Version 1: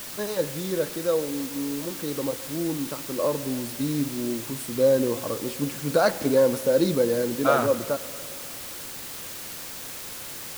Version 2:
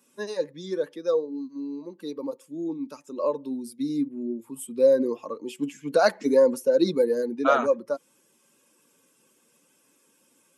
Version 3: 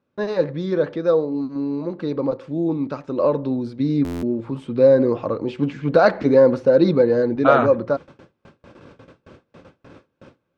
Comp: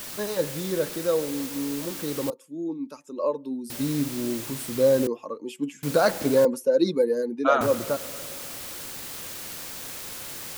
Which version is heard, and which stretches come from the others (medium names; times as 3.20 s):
1
2.30–3.70 s: from 2
5.07–5.83 s: from 2
6.45–7.61 s: from 2
not used: 3